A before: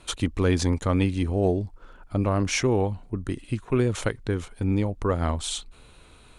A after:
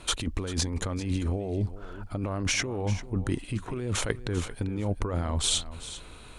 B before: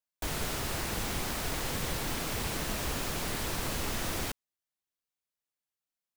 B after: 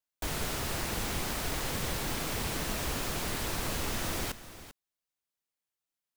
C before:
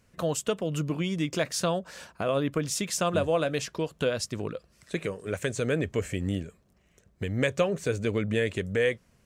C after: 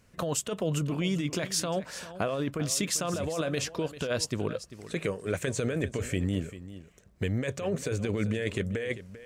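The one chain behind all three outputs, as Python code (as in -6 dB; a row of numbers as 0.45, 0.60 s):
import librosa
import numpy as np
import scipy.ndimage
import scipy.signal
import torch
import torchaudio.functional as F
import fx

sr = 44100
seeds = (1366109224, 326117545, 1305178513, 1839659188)

p1 = fx.over_compress(x, sr, threshold_db=-29.0, ratio=-1.0)
y = p1 + fx.echo_single(p1, sr, ms=394, db=-14.5, dry=0)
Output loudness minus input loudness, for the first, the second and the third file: -4.5, 0.0, -2.0 LU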